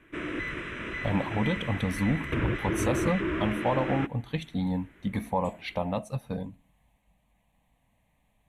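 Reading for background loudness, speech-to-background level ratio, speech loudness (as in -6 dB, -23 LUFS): -32.5 LUFS, 1.5 dB, -31.0 LUFS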